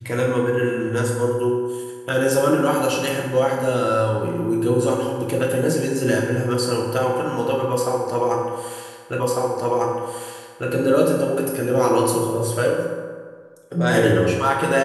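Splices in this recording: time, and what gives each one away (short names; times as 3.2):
9.2 repeat of the last 1.5 s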